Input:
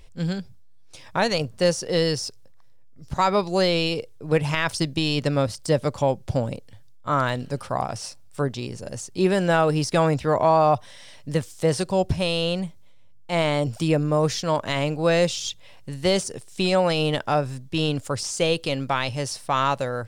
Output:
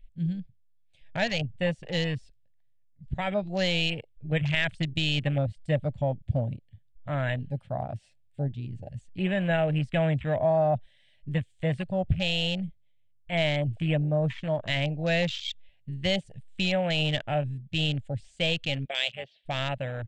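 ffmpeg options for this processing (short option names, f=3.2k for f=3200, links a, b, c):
-filter_complex "[0:a]asettb=1/sr,asplit=3[a][b][c];[a]atrim=end=18.854[d];[b]atrim=start=18.85:end=19.46,asetpts=PTS-STARTPTS,afade=t=in:d=0.004:c=qsin,afade=t=out:st=0.606:d=0.004:c=qsin,highpass=380,equalizer=f=430:t=q:w=4:g=5,equalizer=f=880:t=q:w=4:g=-7,equalizer=f=1.3k:t=q:w=4:g=-8,equalizer=f=1.8k:t=q:w=4:g=-3,equalizer=f=3.3k:t=q:w=4:g=8,lowpass=f=4.3k:w=0.5412,lowpass=f=4.3k:w=1.3066[e];[c]atrim=start=19.456[f];[d][e]acrossfade=d=0.004:c1=hsin:c2=qsin[g];[g][f]acrossfade=d=0.004:c1=qsin:c2=hsin,firequalizer=gain_entry='entry(130,0);entry(400,-15);entry(630,1);entry(1100,-15);entry(1700,9);entry(3300,6);entry(5400,-18);entry(8000,-10);entry(12000,-26)':delay=0.05:min_phase=1,afwtdn=0.0316,equalizer=f=1.6k:w=0.64:g=-10"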